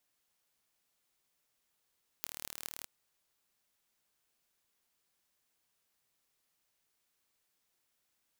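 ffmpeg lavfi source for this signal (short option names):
-f lavfi -i "aevalsrc='0.316*eq(mod(n,1157),0)*(0.5+0.5*eq(mod(n,9256),0))':d=0.61:s=44100"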